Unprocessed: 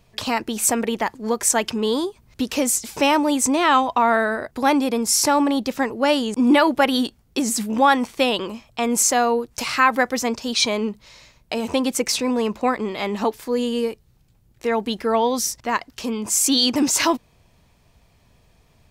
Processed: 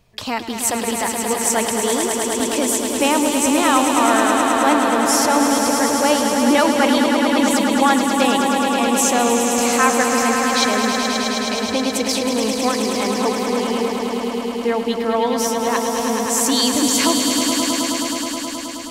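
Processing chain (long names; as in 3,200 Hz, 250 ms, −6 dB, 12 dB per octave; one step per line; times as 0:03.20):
echo that builds up and dies away 106 ms, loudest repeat 5, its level −7 dB
level −1 dB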